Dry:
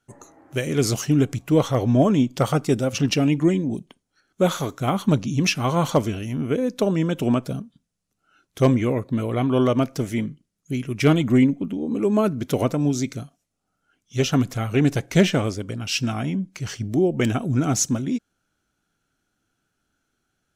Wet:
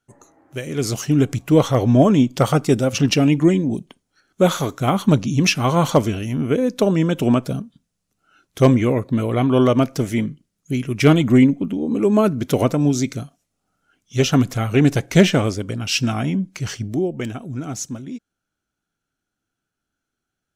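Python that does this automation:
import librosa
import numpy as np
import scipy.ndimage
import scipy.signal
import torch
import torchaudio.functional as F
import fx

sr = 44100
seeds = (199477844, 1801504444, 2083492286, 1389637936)

y = fx.gain(x, sr, db=fx.line((0.64, -3.5), (1.34, 4.0), (16.68, 4.0), (17.33, -7.0)))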